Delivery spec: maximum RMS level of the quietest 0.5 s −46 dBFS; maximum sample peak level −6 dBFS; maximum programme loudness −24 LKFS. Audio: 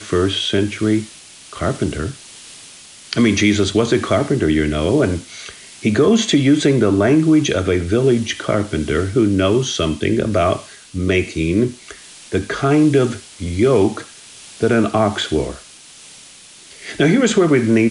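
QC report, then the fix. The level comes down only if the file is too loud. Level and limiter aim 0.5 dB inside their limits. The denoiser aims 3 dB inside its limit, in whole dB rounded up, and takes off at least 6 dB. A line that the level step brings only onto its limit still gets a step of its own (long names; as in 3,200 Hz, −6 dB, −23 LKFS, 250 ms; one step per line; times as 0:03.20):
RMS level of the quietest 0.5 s −42 dBFS: out of spec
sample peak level −2.0 dBFS: out of spec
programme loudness −17.0 LKFS: out of spec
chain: level −7.5 dB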